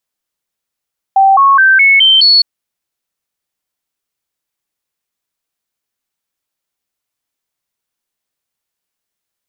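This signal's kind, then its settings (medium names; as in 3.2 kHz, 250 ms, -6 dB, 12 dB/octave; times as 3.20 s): stepped sine 778 Hz up, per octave 2, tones 6, 0.21 s, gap 0.00 s -4 dBFS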